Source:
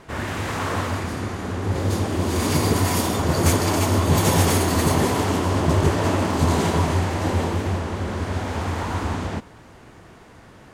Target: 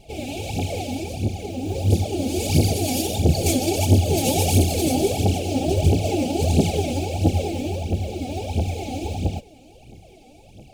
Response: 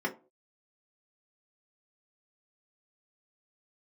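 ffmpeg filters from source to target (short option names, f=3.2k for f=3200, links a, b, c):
-af "afftfilt=real='re*(1-between(b*sr/4096,860,2200))':imag='im*(1-between(b*sr/4096,860,2200))':win_size=4096:overlap=0.75,acrusher=bits=8:mode=log:mix=0:aa=0.000001,aphaser=in_gain=1:out_gain=1:delay=4.1:decay=0.71:speed=1.5:type=triangular,volume=-3dB"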